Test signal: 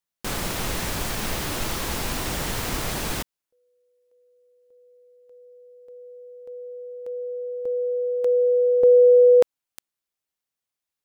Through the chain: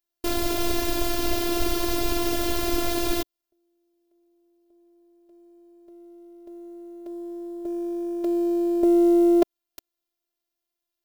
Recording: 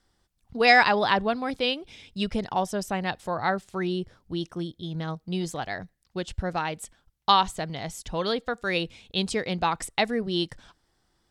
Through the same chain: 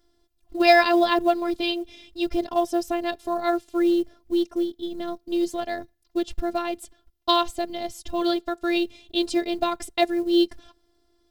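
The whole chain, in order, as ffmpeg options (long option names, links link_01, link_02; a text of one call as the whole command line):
ffmpeg -i in.wav -af "equalizer=frequency=250:width_type=o:width=1:gain=3,equalizer=frequency=500:width_type=o:width=1:gain=5,equalizer=frequency=1000:width_type=o:width=1:gain=-5,equalizer=frequency=2000:width_type=o:width=1:gain=-6,equalizer=frequency=8000:width_type=o:width=1:gain=-7,afftfilt=real='hypot(re,im)*cos(PI*b)':imag='0':win_size=512:overlap=0.75,acrusher=bits=8:mode=log:mix=0:aa=0.000001,volume=7dB" out.wav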